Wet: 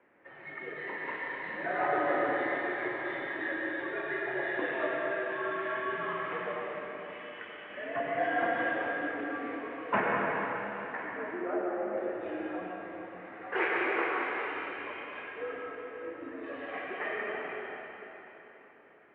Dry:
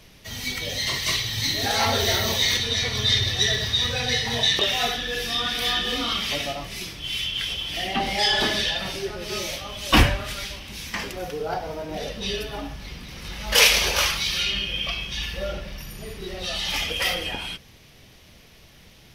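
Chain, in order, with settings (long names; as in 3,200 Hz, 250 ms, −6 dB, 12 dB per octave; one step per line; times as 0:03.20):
dense smooth reverb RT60 3.7 s, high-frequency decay 0.95×, pre-delay 85 ms, DRR −2.5 dB
single-sideband voice off tune −100 Hz 380–2,000 Hz
level −7 dB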